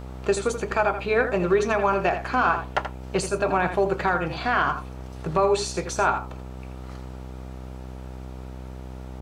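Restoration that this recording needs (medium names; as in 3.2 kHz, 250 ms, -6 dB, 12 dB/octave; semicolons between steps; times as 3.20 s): de-hum 63.9 Hz, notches 15; inverse comb 82 ms -9.5 dB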